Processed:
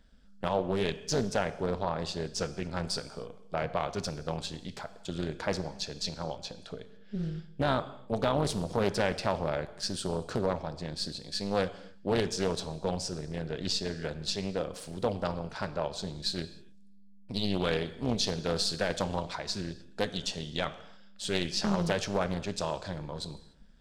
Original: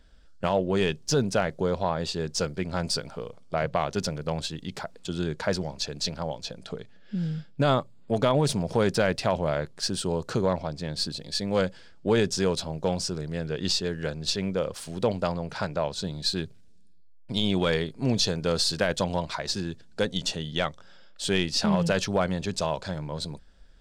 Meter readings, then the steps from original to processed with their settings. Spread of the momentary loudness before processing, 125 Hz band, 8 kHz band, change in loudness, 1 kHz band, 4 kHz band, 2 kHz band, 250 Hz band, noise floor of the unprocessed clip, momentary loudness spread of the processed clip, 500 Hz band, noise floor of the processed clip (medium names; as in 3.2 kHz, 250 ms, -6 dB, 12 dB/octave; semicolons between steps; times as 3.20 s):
9 LU, -5.5 dB, -5.5 dB, -5.0 dB, -3.5 dB, -5.0 dB, -5.0 dB, -5.5 dB, -48 dBFS, 9 LU, -5.0 dB, -51 dBFS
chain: AM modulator 200 Hz, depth 40%; gated-style reverb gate 320 ms falling, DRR 11.5 dB; loudspeaker Doppler distortion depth 0.34 ms; trim -2.5 dB